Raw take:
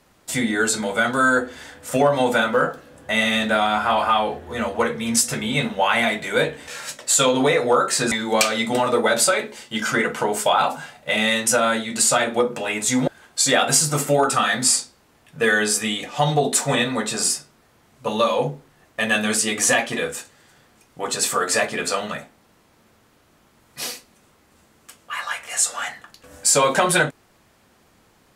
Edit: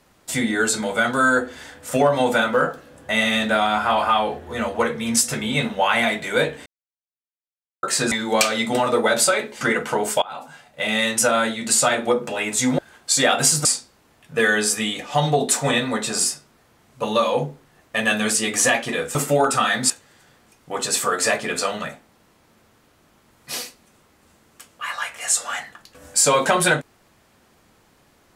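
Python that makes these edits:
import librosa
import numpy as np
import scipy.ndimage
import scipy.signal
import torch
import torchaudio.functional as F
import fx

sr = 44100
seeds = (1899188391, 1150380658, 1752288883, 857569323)

y = fx.edit(x, sr, fx.silence(start_s=6.66, length_s=1.17),
    fx.cut(start_s=9.61, length_s=0.29),
    fx.fade_in_from(start_s=10.51, length_s=0.88, floor_db=-24.0),
    fx.move(start_s=13.94, length_s=0.75, to_s=20.19), tone=tone)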